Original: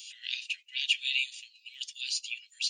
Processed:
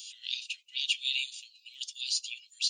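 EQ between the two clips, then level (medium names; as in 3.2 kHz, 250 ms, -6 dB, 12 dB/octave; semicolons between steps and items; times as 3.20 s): FFT filter 1.2 kHz 0 dB, 1.7 kHz -15 dB, 3.5 kHz +2 dB; 0.0 dB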